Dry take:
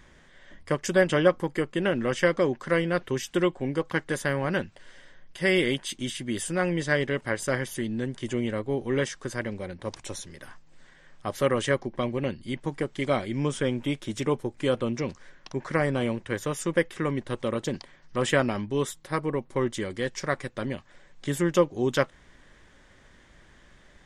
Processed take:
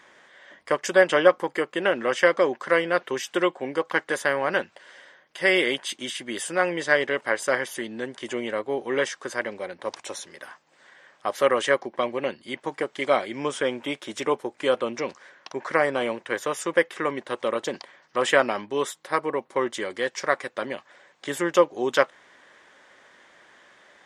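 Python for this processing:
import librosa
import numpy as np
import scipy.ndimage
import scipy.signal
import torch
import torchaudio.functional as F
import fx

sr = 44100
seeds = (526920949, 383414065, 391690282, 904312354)

y = scipy.signal.sosfilt(scipy.signal.butter(2, 630.0, 'highpass', fs=sr, output='sos'), x)
y = fx.tilt_eq(y, sr, slope=-2.0)
y = y * librosa.db_to_amplitude(7.0)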